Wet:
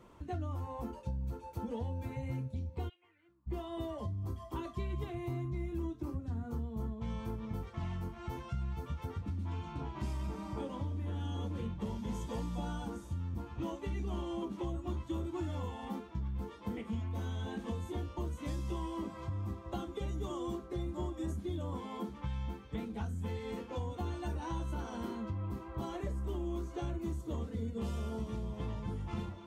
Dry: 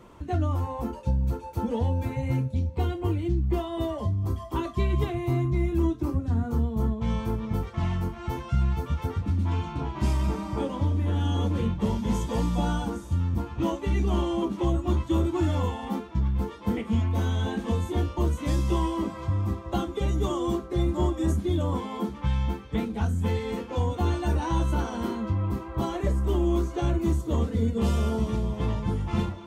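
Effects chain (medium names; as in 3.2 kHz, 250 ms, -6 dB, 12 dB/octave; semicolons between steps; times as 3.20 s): compression 2.5:1, threshold -28 dBFS, peak gain reduction 6 dB; 2.88–3.46 s: band-pass filter 3.1 kHz -> 970 Hz, Q 6.9; trim -8 dB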